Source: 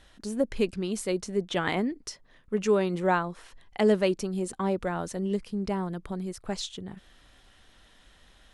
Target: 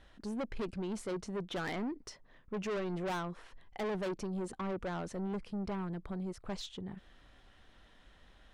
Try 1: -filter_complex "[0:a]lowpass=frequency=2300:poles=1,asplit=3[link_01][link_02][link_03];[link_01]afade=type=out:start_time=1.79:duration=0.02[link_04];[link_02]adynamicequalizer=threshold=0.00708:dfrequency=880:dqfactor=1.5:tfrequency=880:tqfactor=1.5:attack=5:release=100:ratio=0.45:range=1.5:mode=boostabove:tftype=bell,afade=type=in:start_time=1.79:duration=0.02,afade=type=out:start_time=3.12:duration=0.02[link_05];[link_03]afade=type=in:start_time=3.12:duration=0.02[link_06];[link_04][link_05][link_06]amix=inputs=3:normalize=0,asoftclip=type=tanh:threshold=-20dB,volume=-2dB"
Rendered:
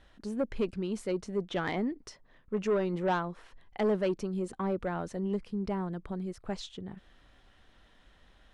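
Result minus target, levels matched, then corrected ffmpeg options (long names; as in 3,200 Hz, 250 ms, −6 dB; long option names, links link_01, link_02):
soft clipping: distortion −9 dB
-filter_complex "[0:a]lowpass=frequency=2300:poles=1,asplit=3[link_01][link_02][link_03];[link_01]afade=type=out:start_time=1.79:duration=0.02[link_04];[link_02]adynamicequalizer=threshold=0.00708:dfrequency=880:dqfactor=1.5:tfrequency=880:tqfactor=1.5:attack=5:release=100:ratio=0.45:range=1.5:mode=boostabove:tftype=bell,afade=type=in:start_time=1.79:duration=0.02,afade=type=out:start_time=3.12:duration=0.02[link_05];[link_03]afade=type=in:start_time=3.12:duration=0.02[link_06];[link_04][link_05][link_06]amix=inputs=3:normalize=0,asoftclip=type=tanh:threshold=-31.5dB,volume=-2dB"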